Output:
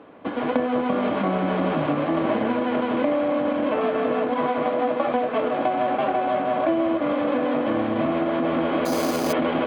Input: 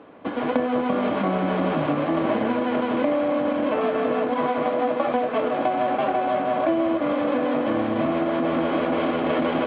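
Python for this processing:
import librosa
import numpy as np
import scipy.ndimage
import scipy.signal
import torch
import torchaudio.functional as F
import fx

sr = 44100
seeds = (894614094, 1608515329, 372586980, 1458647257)

y = fx.resample_bad(x, sr, factor=8, down='none', up='hold', at=(8.85, 9.33))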